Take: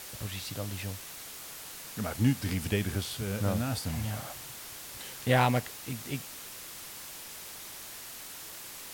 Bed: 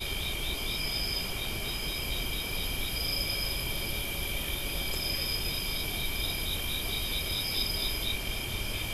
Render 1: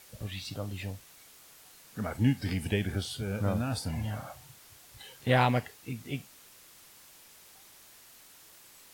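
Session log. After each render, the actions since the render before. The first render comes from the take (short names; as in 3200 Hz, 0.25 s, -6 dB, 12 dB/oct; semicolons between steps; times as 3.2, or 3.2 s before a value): noise print and reduce 11 dB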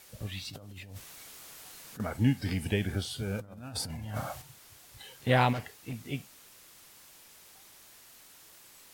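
0.5–2 negative-ratio compressor -45 dBFS; 3.39–4.42 negative-ratio compressor -37 dBFS, ratio -0.5; 5.53–5.95 hard clip -32 dBFS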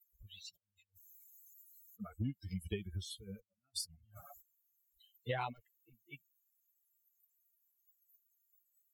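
per-bin expansion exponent 3; compressor 6:1, threshold -35 dBFS, peak gain reduction 12.5 dB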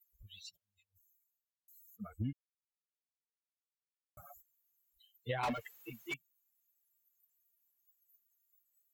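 0.48–1.68 studio fade out; 2.33–4.17 mute; 5.43–6.14 overdrive pedal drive 36 dB, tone 2900 Hz, clips at -27.5 dBFS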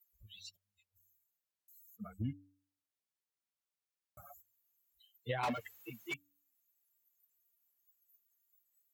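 HPF 55 Hz; de-hum 95.91 Hz, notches 3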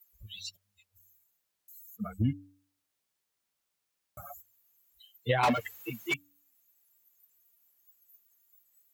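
gain +10 dB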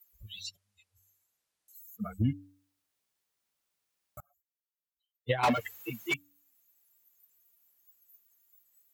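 0.46–1.75 LPF 12000 Hz 24 dB/oct; 4.2–5.44 upward expander 2.5:1, over -43 dBFS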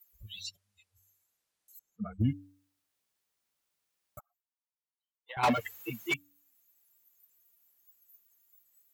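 1.79–2.21 tape spacing loss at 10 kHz 26 dB; 4.19–5.37 ladder high-pass 850 Hz, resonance 70%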